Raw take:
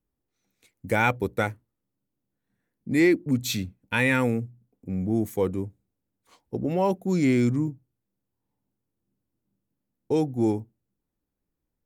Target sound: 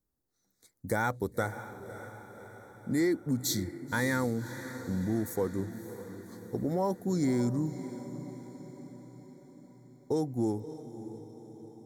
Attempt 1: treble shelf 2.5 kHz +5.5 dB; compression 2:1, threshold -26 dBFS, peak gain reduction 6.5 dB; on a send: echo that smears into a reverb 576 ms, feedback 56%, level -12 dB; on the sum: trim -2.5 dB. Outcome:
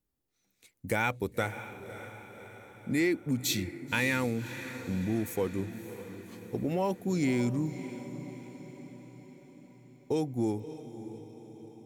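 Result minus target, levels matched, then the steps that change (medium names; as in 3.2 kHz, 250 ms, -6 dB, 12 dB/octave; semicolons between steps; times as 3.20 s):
2 kHz band +2.5 dB
add first: Butterworth band-stop 2.7 kHz, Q 1.3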